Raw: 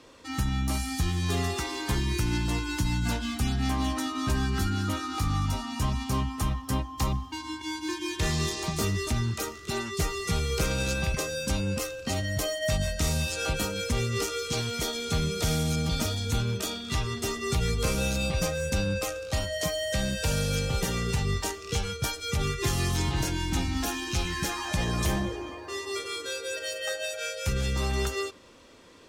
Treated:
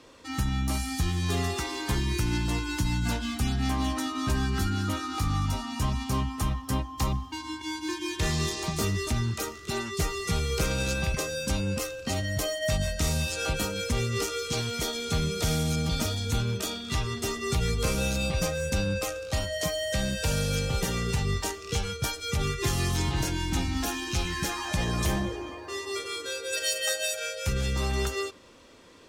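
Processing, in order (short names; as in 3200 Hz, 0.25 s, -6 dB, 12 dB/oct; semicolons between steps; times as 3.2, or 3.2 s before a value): 26.52–27.18 high shelf 2700 Hz -> 5000 Hz +11.5 dB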